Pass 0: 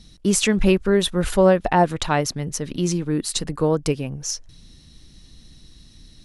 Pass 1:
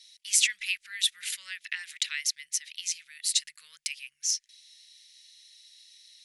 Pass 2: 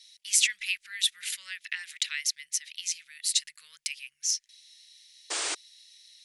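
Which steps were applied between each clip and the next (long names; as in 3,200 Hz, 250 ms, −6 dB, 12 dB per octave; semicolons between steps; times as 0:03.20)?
elliptic high-pass filter 2,000 Hz, stop band 60 dB
sound drawn into the spectrogram noise, 0:05.30–0:05.55, 290–9,500 Hz −31 dBFS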